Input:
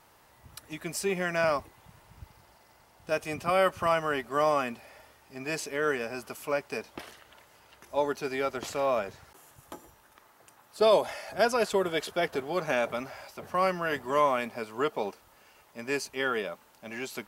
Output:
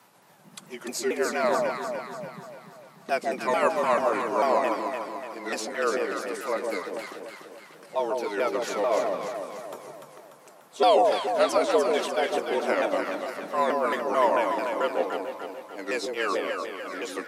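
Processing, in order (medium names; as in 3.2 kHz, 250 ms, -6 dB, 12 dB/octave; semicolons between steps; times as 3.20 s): sawtooth pitch modulation -6 st, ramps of 221 ms; echo whose repeats swap between lows and highs 147 ms, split 830 Hz, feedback 72%, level -2 dB; frequency shift +100 Hz; trim +2.5 dB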